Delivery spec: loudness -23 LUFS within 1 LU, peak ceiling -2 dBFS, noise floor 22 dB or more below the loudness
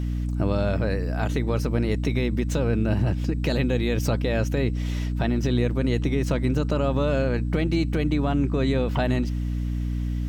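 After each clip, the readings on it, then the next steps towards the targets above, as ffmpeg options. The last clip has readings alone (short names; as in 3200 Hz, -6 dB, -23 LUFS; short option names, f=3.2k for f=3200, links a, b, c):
hum 60 Hz; harmonics up to 300 Hz; hum level -24 dBFS; loudness -24.5 LUFS; peak -11.5 dBFS; loudness target -23.0 LUFS
-> -af "bandreject=f=60:t=h:w=6,bandreject=f=120:t=h:w=6,bandreject=f=180:t=h:w=6,bandreject=f=240:t=h:w=6,bandreject=f=300:t=h:w=6"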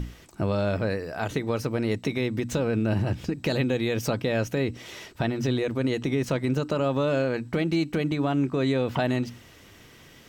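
hum none; loudness -27.0 LUFS; peak -13.5 dBFS; loudness target -23.0 LUFS
-> -af "volume=4dB"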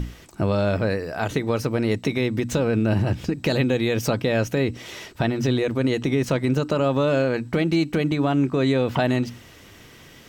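loudness -23.0 LUFS; peak -9.5 dBFS; noise floor -47 dBFS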